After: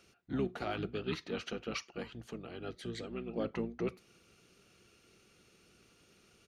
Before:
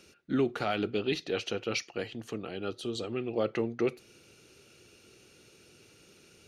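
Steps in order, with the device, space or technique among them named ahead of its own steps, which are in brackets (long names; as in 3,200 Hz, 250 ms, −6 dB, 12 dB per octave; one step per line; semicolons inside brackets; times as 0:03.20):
octave pedal (pitch-shifted copies added −12 semitones −4 dB)
level −8 dB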